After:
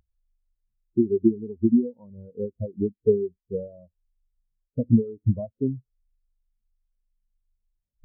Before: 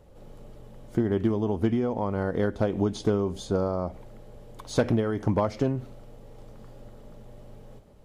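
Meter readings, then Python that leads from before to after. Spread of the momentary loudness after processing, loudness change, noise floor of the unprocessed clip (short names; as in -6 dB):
13 LU, +1.5 dB, -49 dBFS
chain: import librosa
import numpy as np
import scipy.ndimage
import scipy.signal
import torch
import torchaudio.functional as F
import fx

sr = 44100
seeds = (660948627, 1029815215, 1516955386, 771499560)

y = fx.delta_mod(x, sr, bps=16000, step_db=-32.0)
y = fx.spectral_expand(y, sr, expansion=4.0)
y = y * 10.0 ** (7.5 / 20.0)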